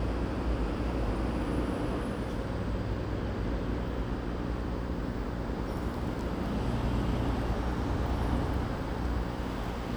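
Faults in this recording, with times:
mains buzz 60 Hz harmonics 9 −37 dBFS

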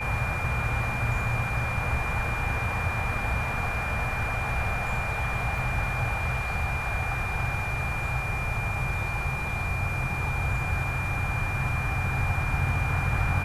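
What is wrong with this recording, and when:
whistle 2,400 Hz −32 dBFS
0:05.58: drop-out 2.2 ms

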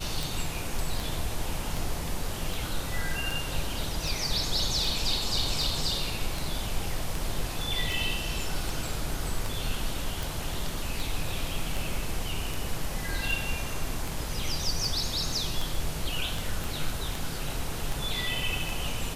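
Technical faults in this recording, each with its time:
scratch tick 78 rpm
0:16.64: click

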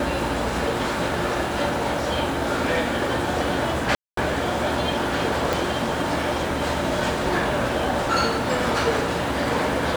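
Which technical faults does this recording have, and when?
0:03.95–0:04.17: drop-out 223 ms
0:05.53: click

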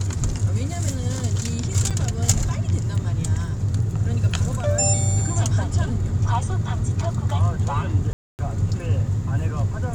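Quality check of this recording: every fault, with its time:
0:01.90–0:01.91: drop-out 6.7 ms
0:08.13–0:08.39: drop-out 259 ms

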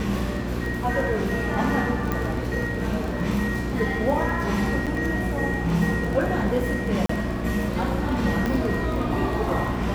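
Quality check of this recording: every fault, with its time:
surface crackle 24 per second −28 dBFS
mains hum 60 Hz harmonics 6 −29 dBFS
0:02.12: click −12 dBFS
0:04.86–0:04.87: drop-out 7.1 ms
0:07.06–0:07.09: drop-out 34 ms
0:08.46: click −13 dBFS

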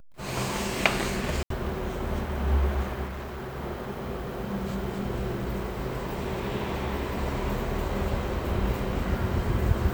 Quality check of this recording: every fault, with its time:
0:01.43–0:01.50: drop-out 73 ms
0:03.05–0:03.56: clipping −32.5 dBFS

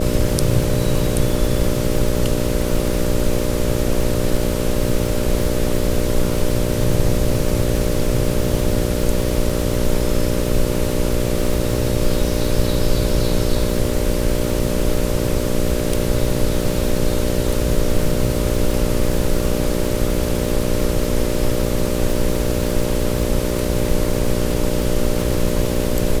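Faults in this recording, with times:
mains buzz 60 Hz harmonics 10 −22 dBFS
surface crackle 190 per second −24 dBFS

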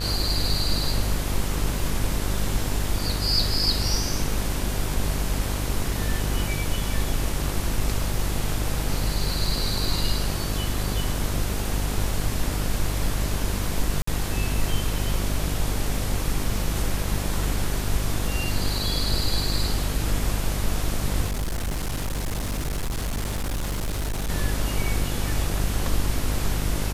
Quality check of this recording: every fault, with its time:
mains buzz 50 Hz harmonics 35 −28 dBFS
0:14.02–0:14.07: drop-out 54 ms
0:21.26–0:24.30: clipping −23.5 dBFS

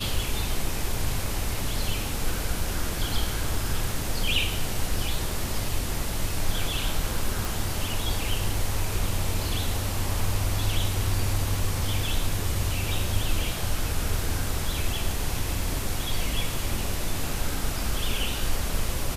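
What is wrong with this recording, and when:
0:07.45: click

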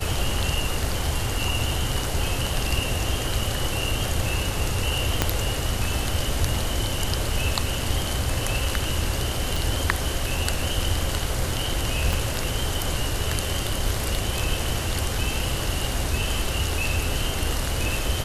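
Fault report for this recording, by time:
0:05.22: click −3 dBFS
0:09.56: click
0:12.13: click

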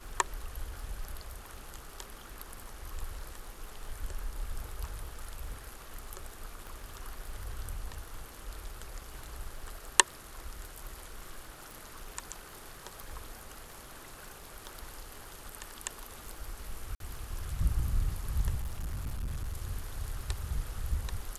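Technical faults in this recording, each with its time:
surface crackle 15 per second −43 dBFS
0:06.67: click
0:11.71: click
0:16.95–0:17.00: drop-out 52 ms
0:18.62–0:19.54: clipping −32 dBFS

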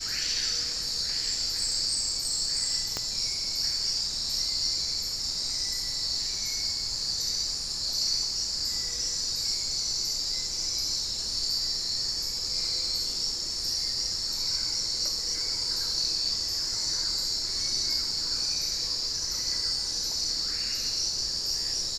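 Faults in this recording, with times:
0:02.97: click −15 dBFS

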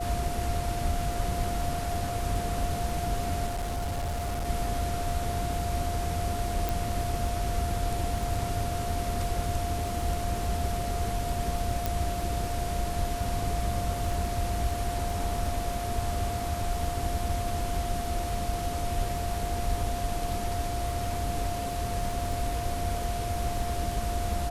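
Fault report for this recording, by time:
surface crackle 13 per second −33 dBFS
whistle 700 Hz −33 dBFS
0:03.46–0:04.47: clipping −27.5 dBFS
0:06.69: click
0:11.86: click

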